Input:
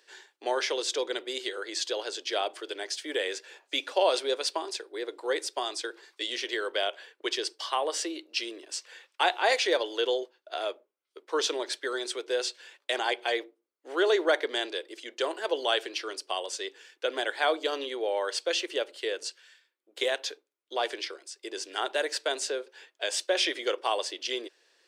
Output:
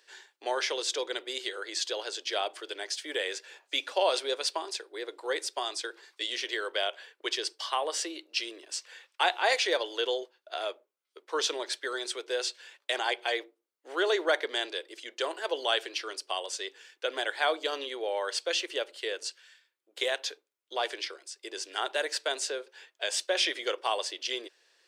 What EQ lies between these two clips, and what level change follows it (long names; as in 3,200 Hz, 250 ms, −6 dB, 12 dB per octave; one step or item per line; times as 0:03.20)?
low-shelf EQ 310 Hz −10.5 dB
0.0 dB